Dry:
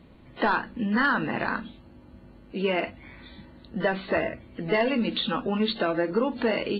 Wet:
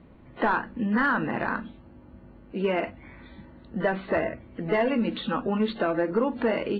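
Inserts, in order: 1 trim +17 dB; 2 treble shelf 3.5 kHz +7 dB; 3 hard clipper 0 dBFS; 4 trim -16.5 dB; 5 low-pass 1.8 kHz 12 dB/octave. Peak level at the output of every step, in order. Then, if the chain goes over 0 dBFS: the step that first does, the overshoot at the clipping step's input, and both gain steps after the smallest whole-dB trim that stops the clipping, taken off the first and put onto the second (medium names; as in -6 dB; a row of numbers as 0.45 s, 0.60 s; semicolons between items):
+3.5 dBFS, +4.5 dBFS, 0.0 dBFS, -16.5 dBFS, -16.0 dBFS; step 1, 4.5 dB; step 1 +12 dB, step 4 -11.5 dB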